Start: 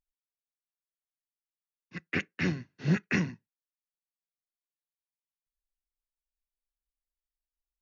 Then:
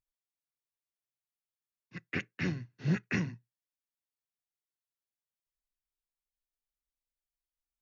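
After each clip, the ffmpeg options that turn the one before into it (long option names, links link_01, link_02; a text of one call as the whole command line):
ffmpeg -i in.wav -af "equalizer=frequency=120:width_type=o:width=0.3:gain=10.5,volume=-4.5dB" out.wav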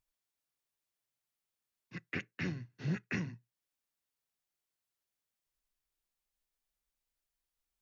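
ffmpeg -i in.wav -af "acompressor=threshold=-54dB:ratio=1.5,volume=4.5dB" out.wav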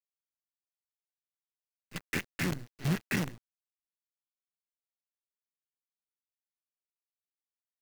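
ffmpeg -i in.wav -af "acrusher=bits=7:dc=4:mix=0:aa=0.000001,volume=5dB" out.wav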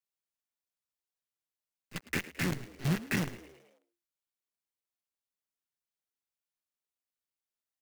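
ffmpeg -i in.wav -filter_complex "[0:a]asplit=6[link_01][link_02][link_03][link_04][link_05][link_06];[link_02]adelay=108,afreqshift=69,volume=-17dB[link_07];[link_03]adelay=216,afreqshift=138,volume=-22.7dB[link_08];[link_04]adelay=324,afreqshift=207,volume=-28.4dB[link_09];[link_05]adelay=432,afreqshift=276,volume=-34dB[link_10];[link_06]adelay=540,afreqshift=345,volume=-39.7dB[link_11];[link_01][link_07][link_08][link_09][link_10][link_11]amix=inputs=6:normalize=0" out.wav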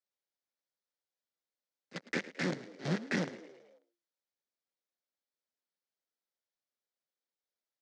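ffmpeg -i in.wav -af "highpass=frequency=180:width=0.5412,highpass=frequency=180:width=1.3066,equalizer=frequency=530:width_type=q:width=4:gain=7,equalizer=frequency=1100:width_type=q:width=4:gain=-4,equalizer=frequency=2700:width_type=q:width=4:gain=-8,lowpass=frequency=5900:width=0.5412,lowpass=frequency=5900:width=1.3066" out.wav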